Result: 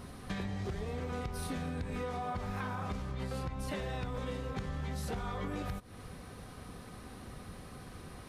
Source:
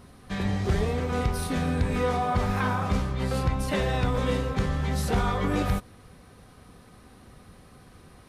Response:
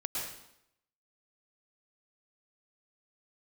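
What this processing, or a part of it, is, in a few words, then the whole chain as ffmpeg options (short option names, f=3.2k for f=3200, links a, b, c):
serial compression, peaks first: -af "acompressor=threshold=-33dB:ratio=6,acompressor=threshold=-41dB:ratio=2,volume=3dB"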